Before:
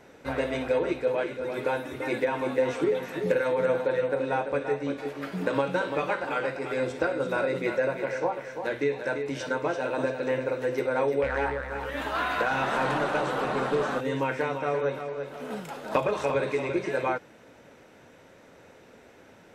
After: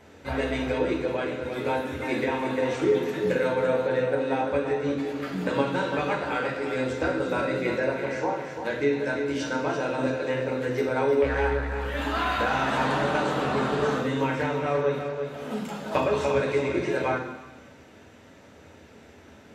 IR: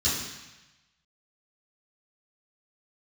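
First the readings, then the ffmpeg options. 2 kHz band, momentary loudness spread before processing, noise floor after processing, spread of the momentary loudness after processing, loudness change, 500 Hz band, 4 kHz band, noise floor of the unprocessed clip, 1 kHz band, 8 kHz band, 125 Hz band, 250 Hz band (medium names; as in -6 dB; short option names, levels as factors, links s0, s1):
+1.5 dB, 6 LU, -51 dBFS, 6 LU, +2.0 dB, +1.0 dB, +4.0 dB, -54 dBFS, +1.5 dB, +3.0 dB, +5.0 dB, +4.0 dB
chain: -filter_complex "[0:a]asplit=2[s0][s1];[1:a]atrim=start_sample=2205[s2];[s1][s2]afir=irnorm=-1:irlink=0,volume=0.251[s3];[s0][s3]amix=inputs=2:normalize=0"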